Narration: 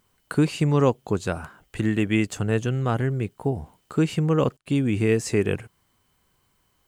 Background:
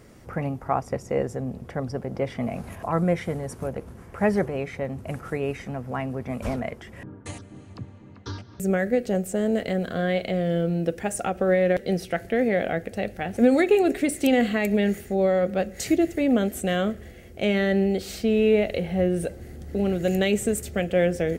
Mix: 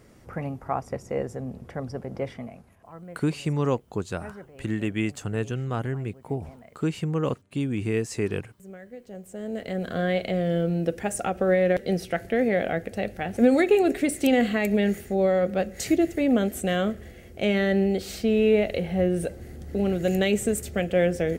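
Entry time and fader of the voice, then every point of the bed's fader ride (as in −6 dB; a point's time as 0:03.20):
2.85 s, −5.0 dB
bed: 0:02.28 −3.5 dB
0:02.71 −20 dB
0:08.95 −20 dB
0:09.93 −0.5 dB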